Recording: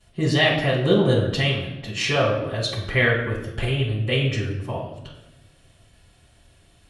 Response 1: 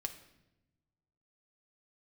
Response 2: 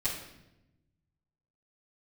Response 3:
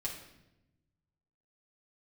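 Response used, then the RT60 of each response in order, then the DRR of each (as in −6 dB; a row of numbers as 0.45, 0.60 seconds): 2; 0.95, 0.90, 0.90 seconds; 5.5, −13.5, −4.0 decibels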